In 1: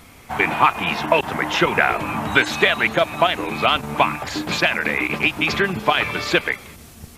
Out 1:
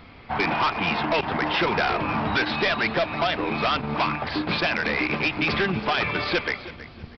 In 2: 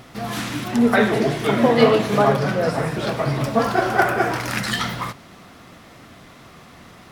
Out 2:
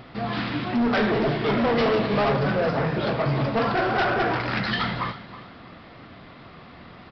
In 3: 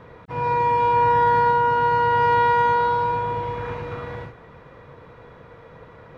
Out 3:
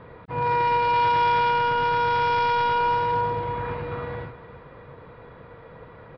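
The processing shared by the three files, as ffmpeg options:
-af "lowpass=f=4000:p=1,aresample=11025,asoftclip=type=hard:threshold=0.112,aresample=44100,aecho=1:1:321|642|963:0.158|0.0428|0.0116"

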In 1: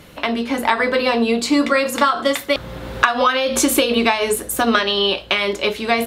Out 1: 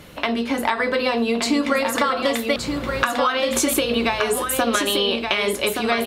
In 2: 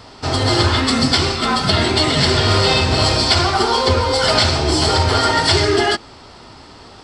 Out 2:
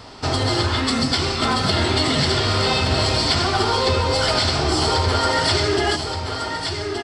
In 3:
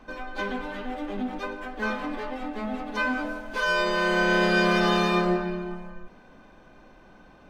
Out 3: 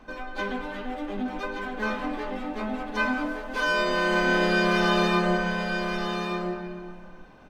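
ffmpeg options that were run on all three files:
-filter_complex "[0:a]acompressor=threshold=0.126:ratio=3,asplit=2[s0][s1];[s1]aecho=0:1:1173:0.501[s2];[s0][s2]amix=inputs=2:normalize=0"

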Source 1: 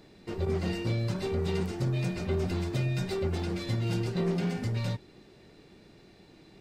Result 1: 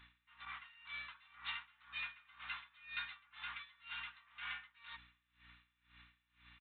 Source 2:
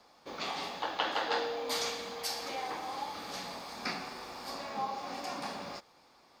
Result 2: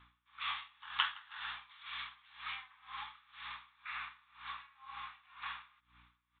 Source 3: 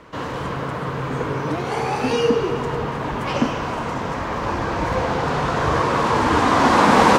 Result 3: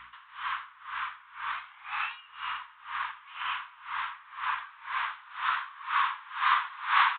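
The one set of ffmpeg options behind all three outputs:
-filter_complex "[0:a]asplit=2[s0][s1];[s1]acompressor=threshold=0.0447:ratio=6,volume=1.19[s2];[s0][s2]amix=inputs=2:normalize=0,asuperpass=centerf=2500:order=12:qfactor=0.54,aresample=8000,aresample=44100,aeval=exprs='val(0)+0.000794*(sin(2*PI*60*n/s)+sin(2*PI*2*60*n/s)/2+sin(2*PI*3*60*n/s)/3+sin(2*PI*4*60*n/s)/4+sin(2*PI*5*60*n/s)/5)':c=same,aeval=exprs='val(0)*pow(10,-24*(0.5-0.5*cos(2*PI*2*n/s))/20)':c=same,volume=0.708"

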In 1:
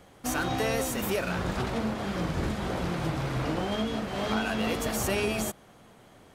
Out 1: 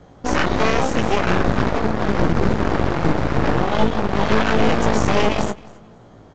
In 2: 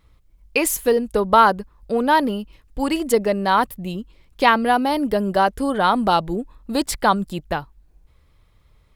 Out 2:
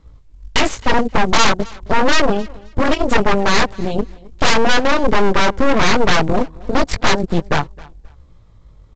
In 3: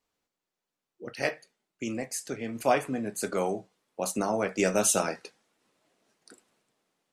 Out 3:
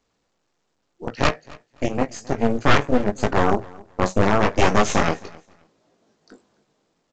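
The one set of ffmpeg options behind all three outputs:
-filter_complex "[0:a]bass=f=250:g=3,treble=f=4000:g=-10,asplit=2[s0][s1];[s1]acompressor=threshold=0.0355:ratio=6,volume=1[s2];[s0][s2]amix=inputs=2:normalize=0,asoftclip=type=tanh:threshold=0.562,flanger=delay=17.5:depth=2.6:speed=0.84,acrossover=split=750|3100[s3][s4][s5];[s4]adynamicsmooth=sensitivity=6:basefreq=1700[s6];[s3][s6][s5]amix=inputs=3:normalize=0,aeval=exprs='0.531*(cos(1*acos(clip(val(0)/0.531,-1,1)))-cos(1*PI/2))+0.00473*(cos(5*acos(clip(val(0)/0.531,-1,1)))-cos(5*PI/2))+0.237*(cos(8*acos(clip(val(0)/0.531,-1,1)))-cos(8*PI/2))':c=same,volume=3.76,asoftclip=hard,volume=0.266,aecho=1:1:265|530:0.0708|0.0156,volume=1.78" -ar 16000 -c:a pcm_alaw

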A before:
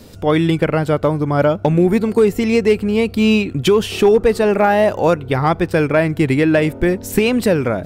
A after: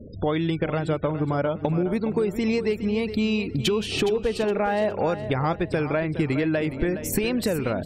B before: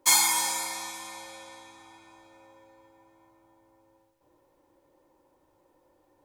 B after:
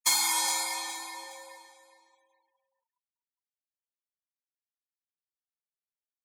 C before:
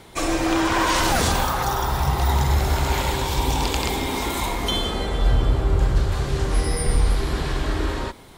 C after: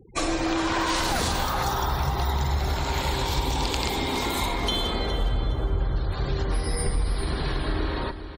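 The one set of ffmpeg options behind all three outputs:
-filter_complex "[0:a]afftfilt=real='re*gte(hypot(re,im),0.0178)':imag='im*gte(hypot(re,im),0.0178)':win_size=1024:overlap=0.75,equalizer=f=4200:w=3.4:g=4.5,acompressor=threshold=0.0794:ratio=5,asplit=2[s0][s1];[s1]aecho=0:1:415|830|1245:0.266|0.0798|0.0239[s2];[s0][s2]amix=inputs=2:normalize=0"

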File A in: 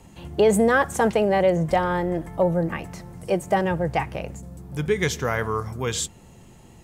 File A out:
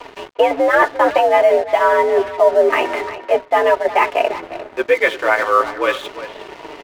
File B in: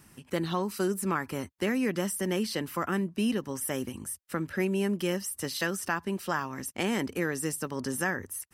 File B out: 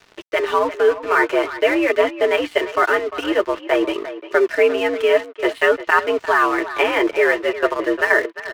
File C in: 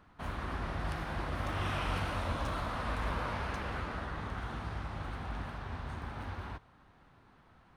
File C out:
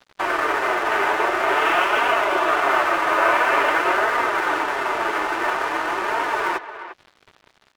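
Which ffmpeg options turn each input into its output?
-filter_complex "[0:a]aecho=1:1:3.5:0.41,areverse,acompressor=threshold=0.0141:ratio=5,areverse,highpass=f=310:t=q:w=0.5412,highpass=f=310:t=q:w=1.307,lowpass=f=2900:t=q:w=0.5176,lowpass=f=2900:t=q:w=0.7071,lowpass=f=2900:t=q:w=1.932,afreqshift=75,apsyclip=31.6,flanger=delay=4:depth=5.8:regen=-12:speed=0.48:shape=triangular,aeval=exprs='sgn(val(0))*max(abs(val(0))-0.0251,0)':c=same,asplit=2[s0][s1];[s1]adelay=350,highpass=300,lowpass=3400,asoftclip=type=hard:threshold=0.282,volume=0.251[s2];[s0][s2]amix=inputs=2:normalize=0,volume=0.891"

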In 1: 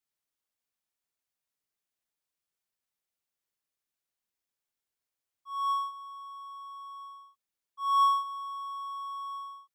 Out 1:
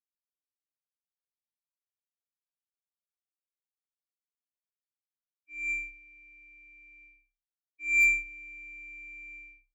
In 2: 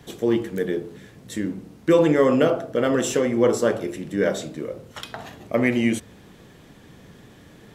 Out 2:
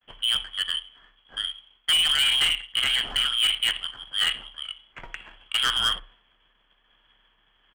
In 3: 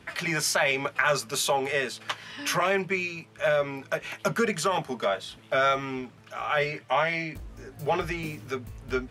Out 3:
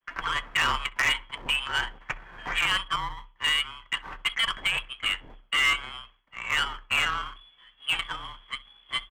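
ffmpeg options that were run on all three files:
-filter_complex "[0:a]agate=range=0.0224:threshold=0.00794:ratio=3:detection=peak,lowpass=f=3000:t=q:w=0.5098,lowpass=f=3000:t=q:w=0.6013,lowpass=f=3000:t=q:w=0.9,lowpass=f=3000:t=q:w=2.563,afreqshift=-3500,acrossover=split=850[s0][s1];[s0]aeval=exprs='abs(val(0))':c=same[s2];[s1]adynamicsmooth=sensitivity=1:basefreq=1100[s3];[s2][s3]amix=inputs=2:normalize=0,afreqshift=-34,acrossover=split=2600[s4][s5];[s5]acompressor=threshold=0.0316:ratio=4:attack=1:release=60[s6];[s4][s6]amix=inputs=2:normalize=0,asplit=2[s7][s8];[s8]adelay=64,lowpass=f=1200:p=1,volume=0.141,asplit=2[s9][s10];[s10]adelay=64,lowpass=f=1200:p=1,volume=0.39,asplit=2[s11][s12];[s12]adelay=64,lowpass=f=1200:p=1,volume=0.39[s13];[s7][s9][s11][s13]amix=inputs=4:normalize=0,asoftclip=type=hard:threshold=0.075,volume=1.78"

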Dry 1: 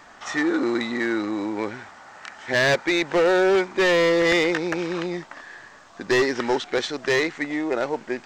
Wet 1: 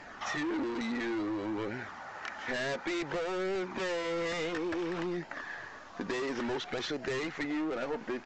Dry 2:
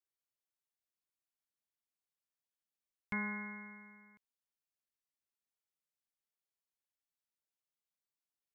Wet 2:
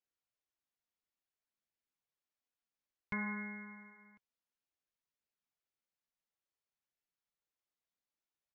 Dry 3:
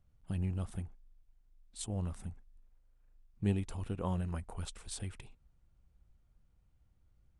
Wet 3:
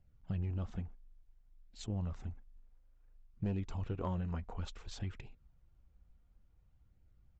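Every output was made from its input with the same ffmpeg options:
-af "aresample=16000,asoftclip=type=hard:threshold=0.0447,aresample=44100,flanger=delay=0.4:depth=3.9:regen=-50:speed=0.57:shape=sinusoidal,aemphasis=mode=reproduction:type=cd,acompressor=threshold=0.0141:ratio=4,volume=1.68"

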